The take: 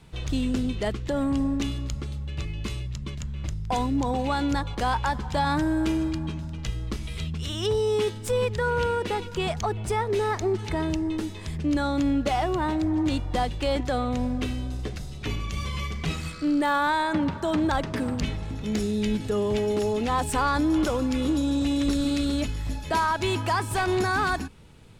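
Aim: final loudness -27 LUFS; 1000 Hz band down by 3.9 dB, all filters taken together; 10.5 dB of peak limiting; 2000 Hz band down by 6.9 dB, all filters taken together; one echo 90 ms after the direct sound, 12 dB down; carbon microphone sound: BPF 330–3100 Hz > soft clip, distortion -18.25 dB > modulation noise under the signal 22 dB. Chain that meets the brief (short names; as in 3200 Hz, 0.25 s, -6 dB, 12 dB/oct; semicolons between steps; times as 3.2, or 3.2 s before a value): bell 1000 Hz -3 dB; bell 2000 Hz -8 dB; limiter -25 dBFS; BPF 330–3100 Hz; echo 90 ms -12 dB; soft clip -29.5 dBFS; modulation noise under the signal 22 dB; gain +11.5 dB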